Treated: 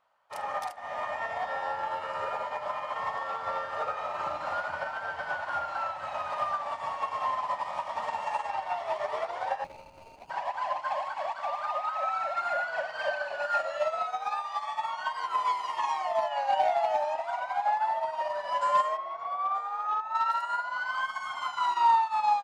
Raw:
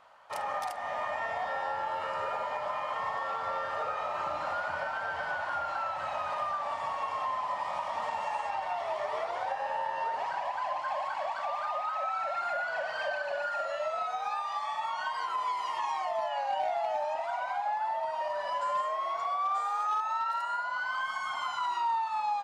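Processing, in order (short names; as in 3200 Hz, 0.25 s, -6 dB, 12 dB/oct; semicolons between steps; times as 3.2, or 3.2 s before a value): 9.64–10.3 median filter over 41 samples; 13.19–13.85 doubler 22 ms -5 dB; 18.97–20.15 tape spacing loss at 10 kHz 21 dB; upward expander 2.5:1, over -43 dBFS; gain +9 dB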